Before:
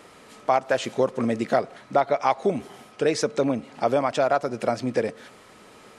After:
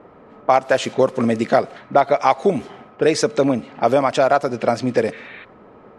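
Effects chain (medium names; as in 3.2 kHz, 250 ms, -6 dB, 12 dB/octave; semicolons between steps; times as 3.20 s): level-controlled noise filter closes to 900 Hz, open at -20 dBFS; spectral replace 5.15–5.42 s, 1.1–4.3 kHz before; trim +6 dB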